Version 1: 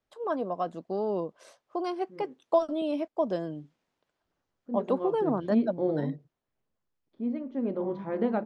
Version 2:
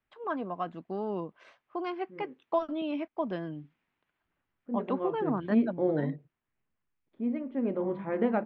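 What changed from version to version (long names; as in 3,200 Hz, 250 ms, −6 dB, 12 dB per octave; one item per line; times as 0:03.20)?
first voice: add parametric band 540 Hz −8.5 dB 0.92 octaves
master: add low-pass with resonance 2,400 Hz, resonance Q 1.7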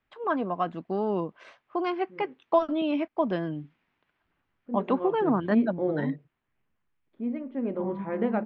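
first voice +6.0 dB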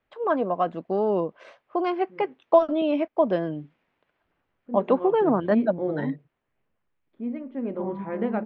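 first voice: add parametric band 540 Hz +8.5 dB 0.92 octaves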